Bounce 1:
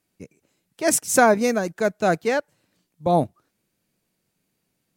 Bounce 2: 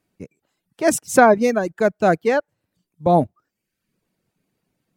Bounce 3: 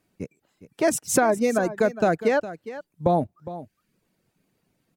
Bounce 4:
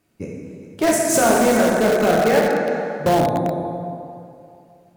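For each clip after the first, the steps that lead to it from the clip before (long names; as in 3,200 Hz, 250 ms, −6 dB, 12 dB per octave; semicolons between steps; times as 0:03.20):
reverb reduction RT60 0.66 s; high-shelf EQ 2,800 Hz −9 dB; level +4.5 dB
downward compressor 6 to 1, threshold −20 dBFS, peak gain reduction 12 dB; single-tap delay 410 ms −14.5 dB; level +2.5 dB
dense smooth reverb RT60 2.5 s, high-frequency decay 0.7×, DRR −3.5 dB; in parallel at −10 dB: wrap-around overflow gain 13 dB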